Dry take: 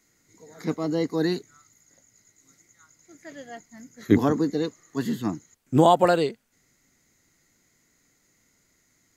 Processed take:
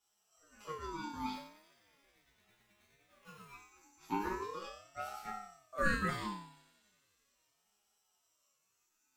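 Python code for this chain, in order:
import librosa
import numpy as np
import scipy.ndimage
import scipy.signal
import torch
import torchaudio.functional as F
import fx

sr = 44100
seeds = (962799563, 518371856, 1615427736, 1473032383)

y = scipy.signal.sosfilt(scipy.signal.bessel(2, 360.0, 'highpass', norm='mag', fs=sr, output='sos'), x)
y = fx.high_shelf(y, sr, hz=11000.0, db=6.0)
y = fx.sample_hold(y, sr, seeds[0], rate_hz=4000.0, jitter_pct=0, at=(1.34, 3.52))
y = fx.resonator_bank(y, sr, root=56, chord='sus4', decay_s=0.64)
y = fx.echo_wet_highpass(y, sr, ms=89, feedback_pct=82, hz=2100.0, wet_db=-19)
y = fx.ring_lfo(y, sr, carrier_hz=810.0, swing_pct=30, hz=0.38)
y = F.gain(torch.from_numpy(y), 11.0).numpy()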